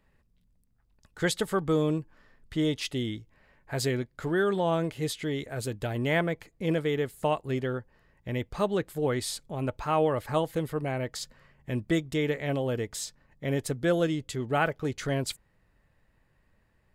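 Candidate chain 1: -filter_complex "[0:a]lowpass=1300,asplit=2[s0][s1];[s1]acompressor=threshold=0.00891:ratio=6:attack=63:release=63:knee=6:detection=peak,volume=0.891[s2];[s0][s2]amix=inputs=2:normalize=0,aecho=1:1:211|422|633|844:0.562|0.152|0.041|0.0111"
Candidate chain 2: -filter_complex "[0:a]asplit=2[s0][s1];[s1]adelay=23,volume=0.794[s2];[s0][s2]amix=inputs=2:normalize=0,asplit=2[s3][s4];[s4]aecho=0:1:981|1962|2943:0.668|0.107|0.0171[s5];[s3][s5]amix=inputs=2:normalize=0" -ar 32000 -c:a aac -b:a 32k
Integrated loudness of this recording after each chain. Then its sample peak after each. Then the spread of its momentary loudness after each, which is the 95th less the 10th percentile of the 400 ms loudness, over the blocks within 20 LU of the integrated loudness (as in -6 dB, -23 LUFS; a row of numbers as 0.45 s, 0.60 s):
-27.5 LUFS, -26.5 LUFS; -10.5 dBFS, -9.5 dBFS; 10 LU, 7 LU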